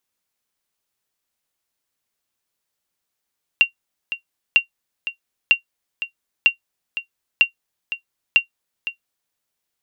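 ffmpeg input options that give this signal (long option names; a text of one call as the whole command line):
ffmpeg -f lavfi -i "aevalsrc='0.668*(sin(2*PI*2760*mod(t,0.95))*exp(-6.91*mod(t,0.95)/0.11)+0.237*sin(2*PI*2760*max(mod(t,0.95)-0.51,0))*exp(-6.91*max(mod(t,0.95)-0.51,0)/0.11))':duration=5.7:sample_rate=44100" out.wav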